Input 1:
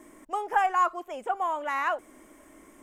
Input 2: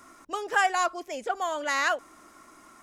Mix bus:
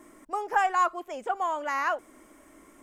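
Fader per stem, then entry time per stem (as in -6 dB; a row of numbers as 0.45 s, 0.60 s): -1.5 dB, -13.0 dB; 0.00 s, 0.00 s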